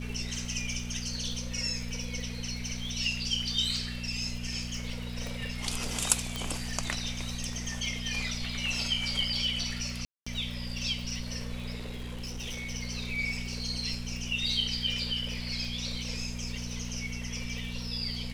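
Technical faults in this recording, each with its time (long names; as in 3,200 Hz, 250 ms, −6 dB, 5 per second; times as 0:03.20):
surface crackle 59 per second −38 dBFS
mains hum 60 Hz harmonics 4 −38 dBFS
0:05.27: click
0:06.36: click
0:10.05–0:10.27: drop-out 215 ms
0:11.76–0:12.71: clipping −33.5 dBFS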